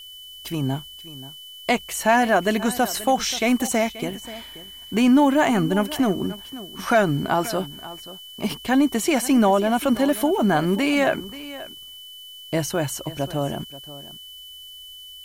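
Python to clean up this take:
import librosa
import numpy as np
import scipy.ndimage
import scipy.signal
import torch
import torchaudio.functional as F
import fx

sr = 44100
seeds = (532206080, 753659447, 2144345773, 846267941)

y = fx.fix_declip(x, sr, threshold_db=-8.5)
y = fx.notch(y, sr, hz=3000.0, q=30.0)
y = fx.noise_reduce(y, sr, print_start_s=14.31, print_end_s=14.81, reduce_db=25.0)
y = fx.fix_echo_inverse(y, sr, delay_ms=532, level_db=-16.5)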